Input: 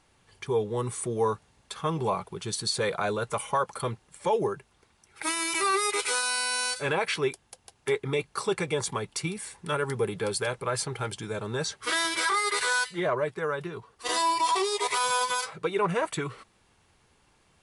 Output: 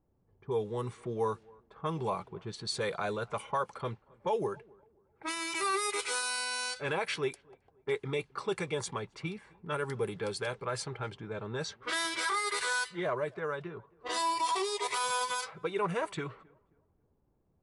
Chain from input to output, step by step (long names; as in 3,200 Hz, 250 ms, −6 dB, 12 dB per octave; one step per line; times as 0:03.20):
low-pass that shuts in the quiet parts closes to 460 Hz, open at −23.5 dBFS
on a send: tape delay 265 ms, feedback 37%, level −24 dB, low-pass 1,300 Hz
on the sum: level −5.5 dB